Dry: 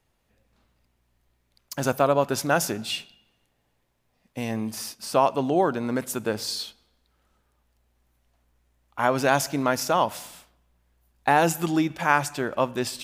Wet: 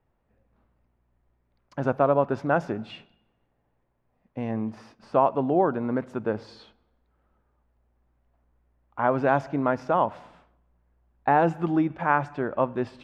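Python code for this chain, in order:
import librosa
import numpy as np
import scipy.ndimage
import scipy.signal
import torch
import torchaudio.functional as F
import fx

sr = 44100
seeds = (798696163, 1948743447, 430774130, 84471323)

y = scipy.signal.sosfilt(scipy.signal.butter(2, 1400.0, 'lowpass', fs=sr, output='sos'), x)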